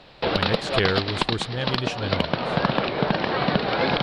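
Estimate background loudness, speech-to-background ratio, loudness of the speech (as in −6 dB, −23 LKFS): −24.5 LKFS, −4.0 dB, −28.5 LKFS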